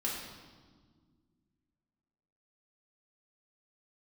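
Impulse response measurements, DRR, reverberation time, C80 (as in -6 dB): -4.5 dB, 1.7 s, 4.0 dB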